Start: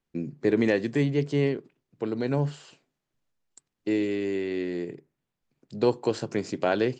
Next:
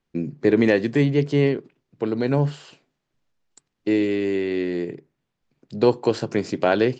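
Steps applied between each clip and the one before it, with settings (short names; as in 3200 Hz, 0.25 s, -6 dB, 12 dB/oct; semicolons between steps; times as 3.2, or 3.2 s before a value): LPF 6300 Hz 12 dB/oct; gain +5.5 dB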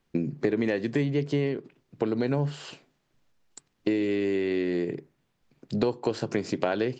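compressor 5:1, threshold -29 dBFS, peak gain reduction 15.5 dB; gain +5 dB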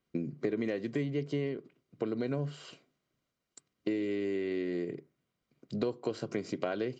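notch comb 870 Hz; gain -6.5 dB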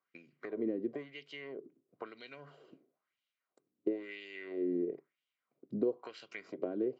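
LFO band-pass sine 1 Hz 280–3100 Hz; gain +3.5 dB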